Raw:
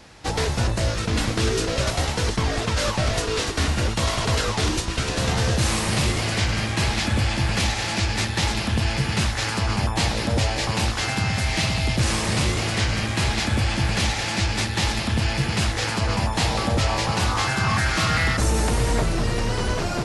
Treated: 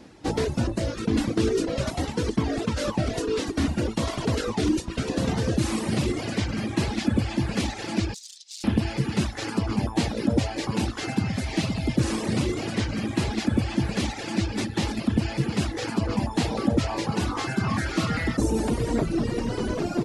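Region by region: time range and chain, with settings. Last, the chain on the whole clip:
8.14–8.64 negative-ratio compressor -25 dBFS, ratio -0.5 + wrapped overs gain 20 dB + Butterworth band-pass 5600 Hz, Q 1.3
whole clip: reverb removal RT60 1.2 s; bell 280 Hz +15 dB 1.7 oct; gain -7 dB

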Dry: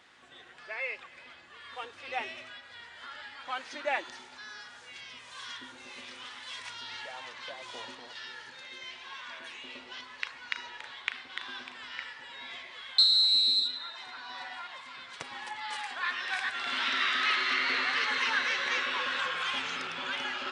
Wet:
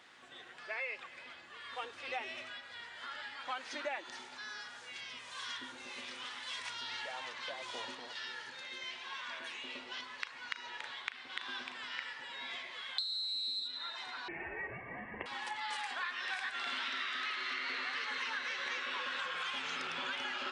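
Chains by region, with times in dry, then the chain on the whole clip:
14.28–15.26 tilt shelf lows -9 dB, about 900 Hz + fixed phaser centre 1300 Hz, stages 8 + inverted band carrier 3300 Hz
whole clip: HPF 120 Hz 6 dB/oct; compressor 12:1, threshold -35 dBFS

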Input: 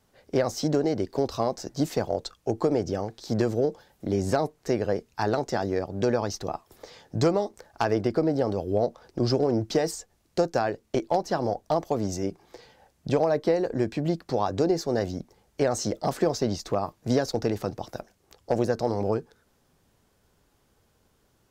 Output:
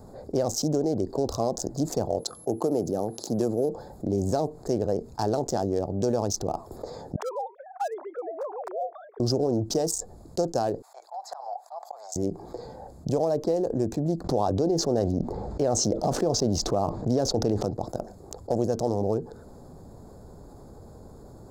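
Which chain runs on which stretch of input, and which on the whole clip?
2.18–3.68 HPF 150 Hz + whine 11000 Hz -54 dBFS
7.16–9.2 sine-wave speech + HPF 780 Hz 24 dB/oct
10.82–12.16 elliptic high-pass 750 Hz, stop band 60 dB + auto swell 0.368 s
14.24–17.63 LPF 4100 Hz + fast leveller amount 50%
whole clip: Wiener smoothing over 15 samples; EQ curve 730 Hz 0 dB, 2100 Hz -16 dB, 6400 Hz +8 dB; fast leveller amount 50%; gain -3 dB

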